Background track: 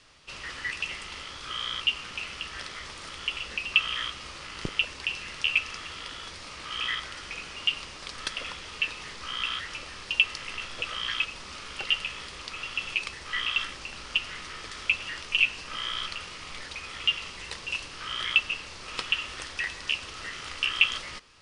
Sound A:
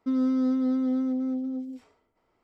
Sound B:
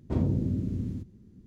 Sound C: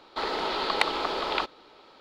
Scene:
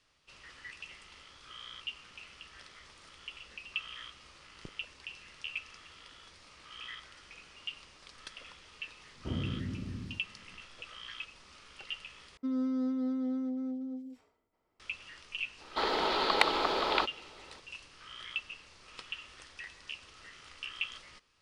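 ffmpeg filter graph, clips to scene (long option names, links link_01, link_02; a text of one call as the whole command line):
ffmpeg -i bed.wav -i cue0.wav -i cue1.wav -i cue2.wav -filter_complex "[0:a]volume=-14.5dB,asplit=2[link_01][link_02];[link_01]atrim=end=12.374[link_03];[1:a]atrim=end=2.43,asetpts=PTS-STARTPTS,volume=-7.5dB[link_04];[link_02]atrim=start=14.796[link_05];[2:a]atrim=end=1.46,asetpts=PTS-STARTPTS,volume=-9dB,afade=type=in:duration=0.004:curve=hsin,afade=type=out:start_time=1.456:duration=0.004:curve=hsin,adelay=9150[link_06];[3:a]atrim=end=2,asetpts=PTS-STARTPTS,volume=-1dB,afade=type=in:duration=0.004:curve=hsin,afade=type=out:start_time=1.996:duration=0.004:curve=hsin,adelay=15600[link_07];[link_03][link_04]acrossfade=duration=0.004:curve1=hsin:curve2=hsin[link_08];[link_08][link_05]acrossfade=duration=0.004:curve1=hsin:curve2=hsin[link_09];[link_09][link_06][link_07]amix=inputs=3:normalize=0" out.wav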